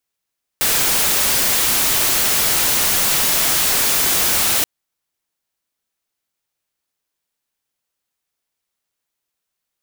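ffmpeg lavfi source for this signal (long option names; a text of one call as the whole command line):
ffmpeg -f lavfi -i "anoisesrc=color=white:amplitude=0.259:duration=4.03:sample_rate=44100:seed=1" out.wav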